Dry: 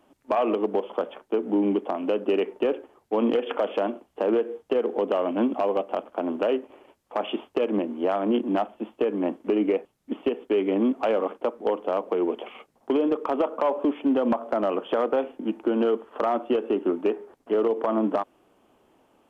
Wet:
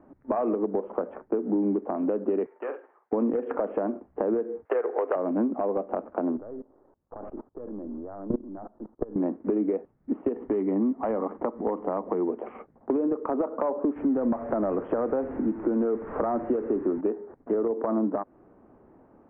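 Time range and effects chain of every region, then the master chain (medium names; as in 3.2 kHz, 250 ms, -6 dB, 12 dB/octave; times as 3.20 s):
2.46–3.13 s: high-pass 1.1 kHz + doubling 47 ms -9 dB
4.65–5.16 s: high-pass 420 Hz 24 dB/octave + peaking EQ 2.1 kHz +12 dB 2.4 oct
6.37–9.16 s: partial rectifier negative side -3 dB + low-pass 1.5 kHz 24 dB/octave + level held to a coarse grid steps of 22 dB
10.36–12.29 s: upward compressor, threshold -29 dBFS + comb 1 ms, depth 34%
13.96–17.01 s: jump at every zero crossing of -33.5 dBFS + distance through air 84 m
whole clip: steep low-pass 1.9 kHz 36 dB/octave; bass shelf 450 Hz +11.5 dB; compression 3:1, threshold -26 dBFS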